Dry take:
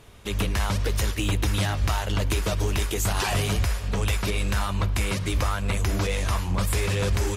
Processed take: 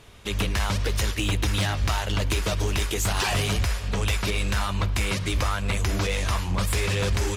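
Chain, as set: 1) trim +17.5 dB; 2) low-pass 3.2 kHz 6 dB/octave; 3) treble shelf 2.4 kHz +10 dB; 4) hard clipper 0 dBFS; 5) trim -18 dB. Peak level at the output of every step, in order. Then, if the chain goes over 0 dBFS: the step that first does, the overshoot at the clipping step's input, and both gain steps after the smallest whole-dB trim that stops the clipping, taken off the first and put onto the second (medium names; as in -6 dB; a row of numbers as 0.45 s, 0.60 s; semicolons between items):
+2.5 dBFS, +2.0 dBFS, +5.0 dBFS, 0.0 dBFS, -18.0 dBFS; step 1, 5.0 dB; step 1 +12.5 dB, step 5 -13 dB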